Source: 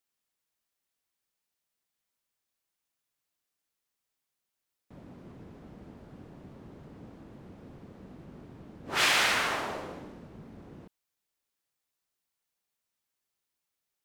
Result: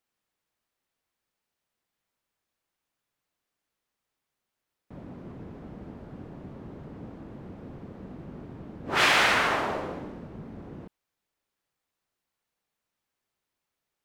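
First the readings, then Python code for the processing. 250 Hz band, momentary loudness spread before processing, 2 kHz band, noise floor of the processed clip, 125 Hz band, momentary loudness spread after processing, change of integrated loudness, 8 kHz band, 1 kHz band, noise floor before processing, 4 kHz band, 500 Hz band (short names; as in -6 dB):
+6.5 dB, 20 LU, +4.0 dB, under -85 dBFS, +6.5 dB, 23 LU, +3.0 dB, -2.0 dB, +5.5 dB, under -85 dBFS, +1.5 dB, +6.0 dB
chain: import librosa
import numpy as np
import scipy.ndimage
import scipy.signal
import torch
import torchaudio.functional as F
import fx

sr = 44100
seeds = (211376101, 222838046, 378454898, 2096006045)

y = fx.high_shelf(x, sr, hz=3500.0, db=-10.5)
y = y * 10.0 ** (6.5 / 20.0)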